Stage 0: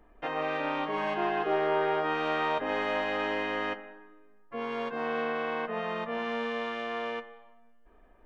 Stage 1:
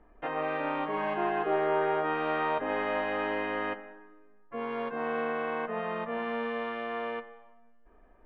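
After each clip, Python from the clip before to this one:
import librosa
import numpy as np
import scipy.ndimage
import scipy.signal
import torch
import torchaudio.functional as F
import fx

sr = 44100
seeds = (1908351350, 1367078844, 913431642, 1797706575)

y = scipy.signal.sosfilt(scipy.signal.butter(2, 2400.0, 'lowpass', fs=sr, output='sos'), x)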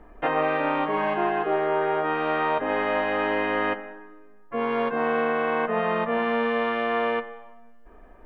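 y = fx.rider(x, sr, range_db=10, speed_s=0.5)
y = y * librosa.db_to_amplitude(7.0)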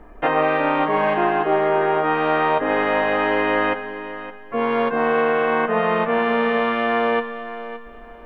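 y = fx.echo_feedback(x, sr, ms=567, feedback_pct=26, wet_db=-13)
y = y * librosa.db_to_amplitude(5.0)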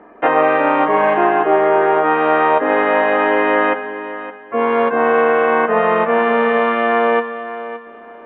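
y = fx.bandpass_edges(x, sr, low_hz=240.0, high_hz=2400.0)
y = y * librosa.db_to_amplitude(5.5)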